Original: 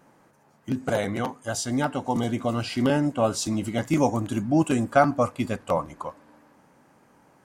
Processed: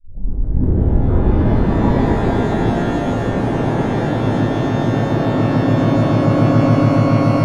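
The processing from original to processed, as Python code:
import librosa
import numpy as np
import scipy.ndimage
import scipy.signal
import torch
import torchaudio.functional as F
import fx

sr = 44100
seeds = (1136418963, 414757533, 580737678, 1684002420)

y = fx.tape_start_head(x, sr, length_s=2.33)
y = fx.doppler_pass(y, sr, speed_mps=9, closest_m=8.2, pass_at_s=2.82)
y = fx.tilt_eq(y, sr, slope=-3.5)
y = fx.env_lowpass_down(y, sr, base_hz=1100.0, full_db=-16.0)
y = fx.echo_swell(y, sr, ms=142, loudest=8, wet_db=-12.0)
y = fx.echo_pitch(y, sr, ms=128, semitones=3, count=3, db_per_echo=-3.0)
y = scipy.signal.sosfilt(scipy.signal.cheby2(4, 80, 9300.0, 'lowpass', fs=sr, output='sos'), y)
y = fx.over_compress(y, sr, threshold_db=-22.0, ratio=-1.0)
y = fx.rev_shimmer(y, sr, seeds[0], rt60_s=3.7, semitones=12, shimmer_db=-8, drr_db=-9.0)
y = y * librosa.db_to_amplitude(-3.0)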